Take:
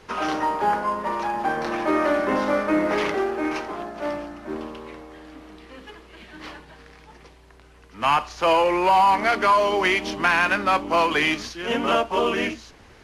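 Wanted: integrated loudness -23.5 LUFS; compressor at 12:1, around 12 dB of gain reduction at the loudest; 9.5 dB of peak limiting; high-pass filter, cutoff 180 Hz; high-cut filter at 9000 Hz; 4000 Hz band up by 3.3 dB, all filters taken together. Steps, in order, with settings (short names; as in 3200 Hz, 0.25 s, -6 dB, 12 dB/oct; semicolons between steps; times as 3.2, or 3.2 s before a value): HPF 180 Hz; LPF 9000 Hz; bell 4000 Hz +5 dB; compressor 12:1, threshold -26 dBFS; gain +10.5 dB; limiter -14.5 dBFS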